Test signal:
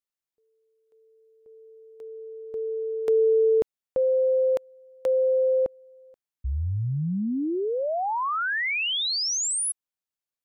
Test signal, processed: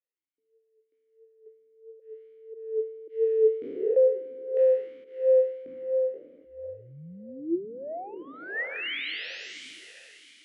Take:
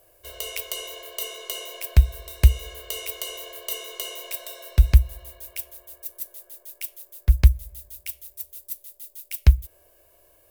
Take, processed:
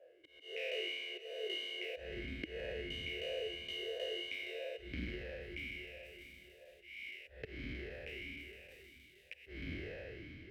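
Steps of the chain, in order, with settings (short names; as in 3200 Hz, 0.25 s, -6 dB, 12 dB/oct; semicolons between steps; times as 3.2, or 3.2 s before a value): spectral trails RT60 2.42 s; in parallel at -1 dB: compressor, threshold -25 dBFS; on the sum: auto swell 0.256 s; soft clip -6 dBFS; overdrive pedal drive 7 dB, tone 1100 Hz, clips at -6 dBFS; on a send: diffused feedback echo 0.527 s, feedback 41%, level -15 dB; on the sum: vowel sweep e-i 1.5 Hz; gain +1.5 dB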